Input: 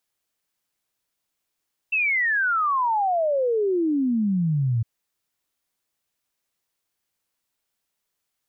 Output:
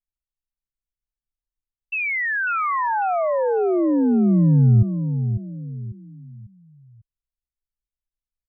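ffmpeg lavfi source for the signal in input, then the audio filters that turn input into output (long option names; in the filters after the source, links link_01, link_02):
-f lavfi -i "aevalsrc='0.112*clip(min(t,2.91-t)/0.01,0,1)*sin(2*PI*2700*2.91/log(110/2700)*(exp(log(110/2700)*t/2.91)-1))':duration=2.91:sample_rate=44100"
-filter_complex "[0:a]anlmdn=3.98,aemphasis=mode=reproduction:type=bsi,asplit=2[link_01][link_02];[link_02]adelay=547,lowpass=frequency=2500:poles=1,volume=-8.5dB,asplit=2[link_03][link_04];[link_04]adelay=547,lowpass=frequency=2500:poles=1,volume=0.36,asplit=2[link_05][link_06];[link_06]adelay=547,lowpass=frequency=2500:poles=1,volume=0.36,asplit=2[link_07][link_08];[link_08]adelay=547,lowpass=frequency=2500:poles=1,volume=0.36[link_09];[link_03][link_05][link_07][link_09]amix=inputs=4:normalize=0[link_10];[link_01][link_10]amix=inputs=2:normalize=0"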